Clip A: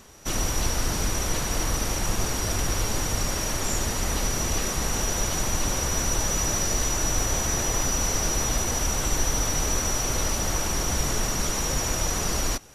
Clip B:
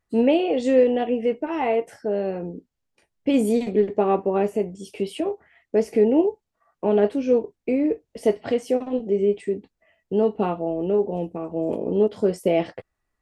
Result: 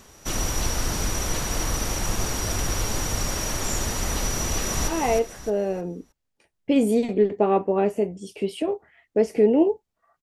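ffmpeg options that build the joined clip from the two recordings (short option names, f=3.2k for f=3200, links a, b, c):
-filter_complex "[0:a]apad=whole_dur=10.22,atrim=end=10.22,atrim=end=4.882[a];[1:a]atrim=start=1.458:end=6.8[b];[a][b]acrossfade=d=0.004:c1=hsin:c2=hsin,asplit=2[c][d];[d]afade=t=in:st=4.39:d=0.01,afade=t=out:st=4.88:d=0.01,aecho=0:1:310|620|930|1240:0.562341|0.168702|0.0506107|0.0151832[e];[c][e]amix=inputs=2:normalize=0"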